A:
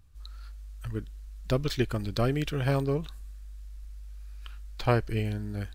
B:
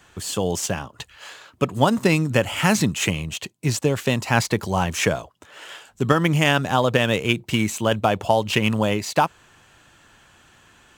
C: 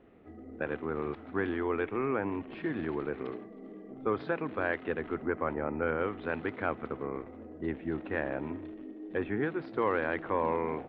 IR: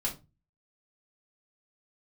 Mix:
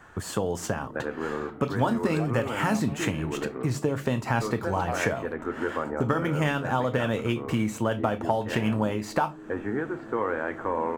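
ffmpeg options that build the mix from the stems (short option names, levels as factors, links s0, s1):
-filter_complex "[0:a]highpass=f=740:t=q:w=4.9,volume=0.224[s0];[1:a]volume=1.26,asplit=3[s1][s2][s3];[s2]volume=0.0891[s4];[2:a]adelay=350,volume=1.06,asplit=2[s5][s6];[s6]volume=0.266[s7];[s3]apad=whole_len=257862[s8];[s0][s8]sidechaingate=range=0.0224:threshold=0.01:ratio=16:detection=peak[s9];[s1][s5]amix=inputs=2:normalize=0,highshelf=f=2300:t=q:w=1.5:g=-12.5,acompressor=threshold=0.0562:ratio=6,volume=1[s10];[3:a]atrim=start_sample=2205[s11];[s4][s7]amix=inputs=2:normalize=0[s12];[s12][s11]afir=irnorm=-1:irlink=0[s13];[s9][s10][s13]amix=inputs=3:normalize=0"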